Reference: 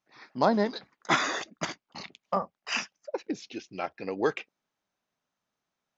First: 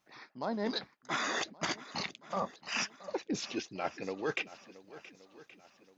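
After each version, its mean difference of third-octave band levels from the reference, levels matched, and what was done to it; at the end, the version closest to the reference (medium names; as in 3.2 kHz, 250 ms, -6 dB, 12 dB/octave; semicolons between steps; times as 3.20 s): 7.0 dB: reverse; compression 12:1, threshold -39 dBFS, peak gain reduction 22 dB; reverse; shuffle delay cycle 1124 ms, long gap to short 1.5:1, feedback 37%, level -17.5 dB; trim +7.5 dB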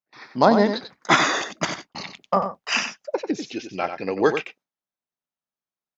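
3.0 dB: gate with hold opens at -51 dBFS; on a send: delay 92 ms -8.5 dB; on the sum: trim +7.5 dB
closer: second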